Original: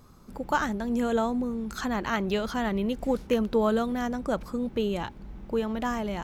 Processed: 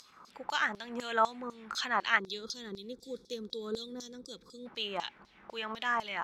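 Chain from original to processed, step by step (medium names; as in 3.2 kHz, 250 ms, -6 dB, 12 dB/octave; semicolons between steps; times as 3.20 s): time-frequency box 2.19–4.66 s, 530–3300 Hz -22 dB; upward compressor, threshold -43 dBFS; LFO band-pass saw down 4 Hz 980–5400 Hz; trim +8.5 dB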